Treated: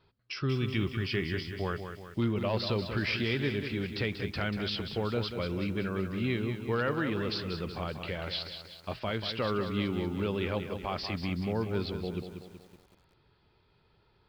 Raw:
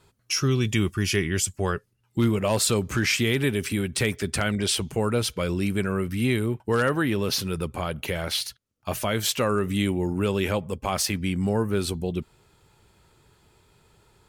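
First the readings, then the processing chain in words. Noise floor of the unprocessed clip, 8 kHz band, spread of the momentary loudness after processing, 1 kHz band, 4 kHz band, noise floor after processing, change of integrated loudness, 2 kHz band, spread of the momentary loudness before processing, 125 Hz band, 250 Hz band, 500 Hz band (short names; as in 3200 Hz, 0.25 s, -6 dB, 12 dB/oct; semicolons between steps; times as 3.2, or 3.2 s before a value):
-67 dBFS, under -25 dB, 7 LU, -6.5 dB, -7.5 dB, -68 dBFS, -7.5 dB, -6.5 dB, 7 LU, -6.5 dB, -7.0 dB, -6.5 dB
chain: downsampling 11025 Hz; lo-fi delay 0.188 s, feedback 55%, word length 8-bit, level -8 dB; gain -7.5 dB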